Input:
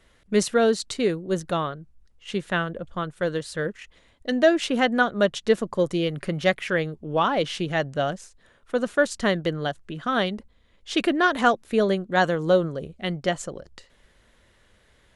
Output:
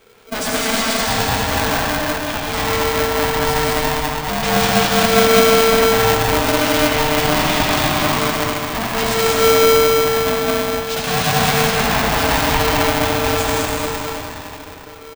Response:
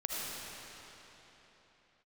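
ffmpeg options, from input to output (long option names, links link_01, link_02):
-filter_complex "[0:a]asettb=1/sr,asplit=3[link_01][link_02][link_03];[link_01]atrim=end=9.384[link_04];[link_02]atrim=start=9.38:end=10.27,asetpts=PTS-STARTPTS,afade=type=in:duration=0.004:curve=qsin,afade=type=out:start_time=0.886:duration=0.004:curve=qsin,acompressor=threshold=-35dB:ratio=6[link_05];[link_03]atrim=start=10.266[link_06];[link_04][link_05]acrossfade=duration=0.004:curve1=hsin:curve2=qsin[link_07];[link_07][link_06]acrossfade=duration=0.004:curve1=qsin:curve2=hsin,aeval=exprs='0.531*sin(PI/2*7.08*val(0)/0.531)':channel_layout=same,flanger=delay=0.4:depth=9.8:regen=-42:speed=0.14:shape=sinusoidal,aecho=1:1:202:0.708[link_08];[1:a]atrim=start_sample=2205,asetrate=42777,aresample=44100[link_09];[link_08][link_09]afir=irnorm=-1:irlink=0,aeval=exprs='val(0)*sgn(sin(2*PI*450*n/s))':channel_layout=same,volume=-9.5dB"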